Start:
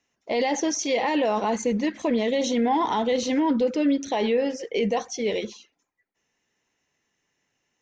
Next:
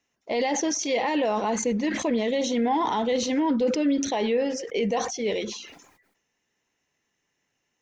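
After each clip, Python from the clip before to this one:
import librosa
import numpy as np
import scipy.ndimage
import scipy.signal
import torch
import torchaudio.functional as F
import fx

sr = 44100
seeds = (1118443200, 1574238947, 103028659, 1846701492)

y = fx.sustainer(x, sr, db_per_s=60.0)
y = y * 10.0 ** (-1.5 / 20.0)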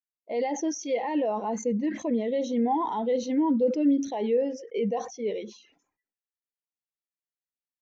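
y = fx.spectral_expand(x, sr, expansion=1.5)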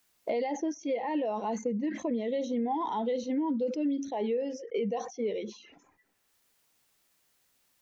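y = fx.band_squash(x, sr, depth_pct=100)
y = y * 10.0 ** (-5.0 / 20.0)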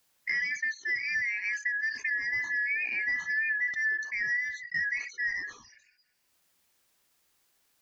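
y = fx.band_shuffle(x, sr, order='3142')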